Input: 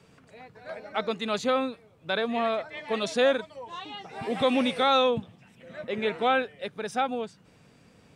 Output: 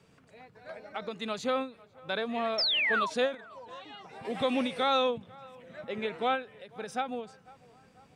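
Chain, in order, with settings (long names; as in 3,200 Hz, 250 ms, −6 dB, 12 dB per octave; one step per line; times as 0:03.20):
0:02.58–0:03.10: sound drawn into the spectrogram fall 900–5,600 Hz −23 dBFS
0:03.34–0:04.25: downward compressor 6 to 1, threshold −39 dBFS, peak gain reduction 13.5 dB
feedback echo with a band-pass in the loop 495 ms, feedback 57%, band-pass 940 Hz, level −22 dB
every ending faded ahead of time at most 180 dB per second
level −4.5 dB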